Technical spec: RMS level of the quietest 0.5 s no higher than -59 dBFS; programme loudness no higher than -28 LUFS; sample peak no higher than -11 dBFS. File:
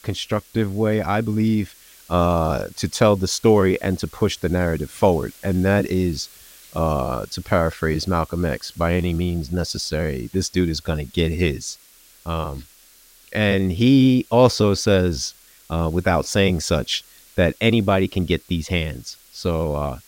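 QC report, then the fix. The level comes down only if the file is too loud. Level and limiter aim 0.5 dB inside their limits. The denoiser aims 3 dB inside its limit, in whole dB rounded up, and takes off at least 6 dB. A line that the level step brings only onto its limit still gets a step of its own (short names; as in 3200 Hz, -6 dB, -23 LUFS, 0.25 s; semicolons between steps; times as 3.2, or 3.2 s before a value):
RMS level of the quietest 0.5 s -51 dBFS: fail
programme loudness -21.0 LUFS: fail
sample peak -2.5 dBFS: fail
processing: denoiser 6 dB, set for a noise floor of -51 dBFS; gain -7.5 dB; limiter -11.5 dBFS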